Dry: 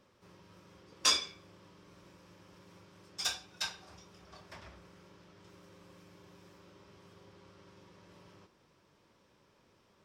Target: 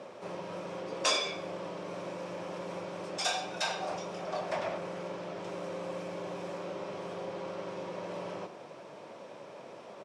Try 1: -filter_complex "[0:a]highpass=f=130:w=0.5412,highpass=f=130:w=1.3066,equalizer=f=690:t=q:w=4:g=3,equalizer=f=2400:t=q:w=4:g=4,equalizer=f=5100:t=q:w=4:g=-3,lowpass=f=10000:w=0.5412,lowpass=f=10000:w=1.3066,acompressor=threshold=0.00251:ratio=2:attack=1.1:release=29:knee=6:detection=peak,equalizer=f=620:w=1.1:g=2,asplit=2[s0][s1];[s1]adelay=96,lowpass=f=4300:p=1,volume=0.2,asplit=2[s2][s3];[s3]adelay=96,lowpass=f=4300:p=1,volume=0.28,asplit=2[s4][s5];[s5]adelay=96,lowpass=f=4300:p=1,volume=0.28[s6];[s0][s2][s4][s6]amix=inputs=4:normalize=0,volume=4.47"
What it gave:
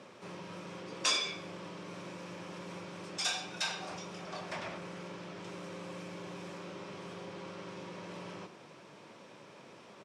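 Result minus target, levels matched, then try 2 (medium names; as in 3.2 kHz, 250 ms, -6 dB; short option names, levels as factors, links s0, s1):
500 Hz band -6.0 dB
-filter_complex "[0:a]highpass=f=130:w=0.5412,highpass=f=130:w=1.3066,equalizer=f=690:t=q:w=4:g=3,equalizer=f=2400:t=q:w=4:g=4,equalizer=f=5100:t=q:w=4:g=-3,lowpass=f=10000:w=0.5412,lowpass=f=10000:w=1.3066,acompressor=threshold=0.00251:ratio=2:attack=1.1:release=29:knee=6:detection=peak,equalizer=f=620:w=1.1:g=13,asplit=2[s0][s1];[s1]adelay=96,lowpass=f=4300:p=1,volume=0.2,asplit=2[s2][s3];[s3]adelay=96,lowpass=f=4300:p=1,volume=0.28,asplit=2[s4][s5];[s5]adelay=96,lowpass=f=4300:p=1,volume=0.28[s6];[s0][s2][s4][s6]amix=inputs=4:normalize=0,volume=4.47"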